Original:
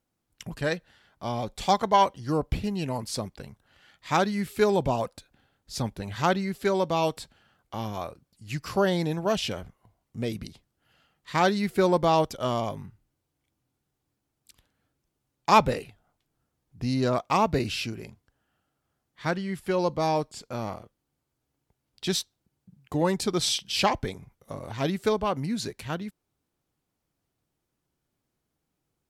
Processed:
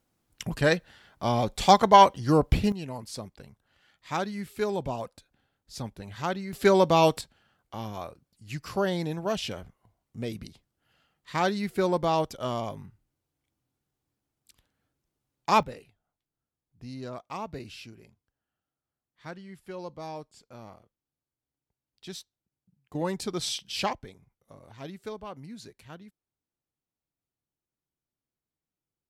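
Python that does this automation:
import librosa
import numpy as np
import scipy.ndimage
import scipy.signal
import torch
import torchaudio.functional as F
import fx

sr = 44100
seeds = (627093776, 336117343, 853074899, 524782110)

y = fx.gain(x, sr, db=fx.steps((0.0, 5.0), (2.72, -6.5), (6.53, 5.0), (7.21, -3.5), (15.63, -13.5), (22.95, -5.5), (23.93, -13.5)))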